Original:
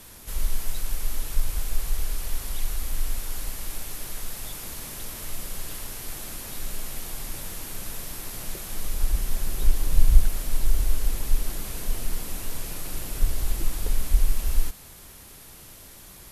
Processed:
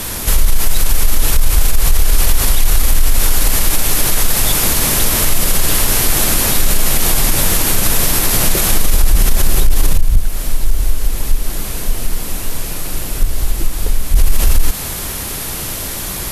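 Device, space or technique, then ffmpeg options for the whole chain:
loud club master: -af "acompressor=threshold=-20dB:ratio=2,asoftclip=type=hard:threshold=-13.5dB,alimiter=level_in=24.5dB:limit=-1dB:release=50:level=0:latency=1,volume=-1dB"

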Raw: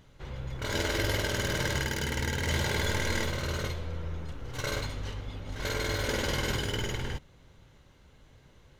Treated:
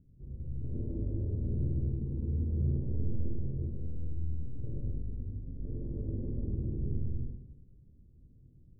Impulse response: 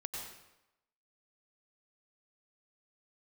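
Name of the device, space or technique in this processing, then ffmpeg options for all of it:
next room: -filter_complex "[0:a]lowpass=f=310:w=0.5412,lowpass=f=310:w=1.3066[a];[1:a]atrim=start_sample=2205[b];[a][b]afir=irnorm=-1:irlink=0"

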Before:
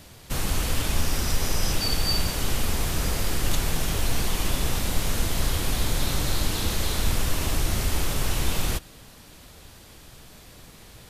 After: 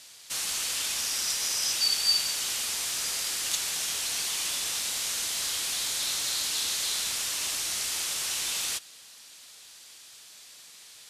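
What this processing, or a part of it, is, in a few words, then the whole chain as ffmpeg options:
piezo pickup straight into a mixer: -af "lowpass=7.2k,aderivative,volume=8dB"

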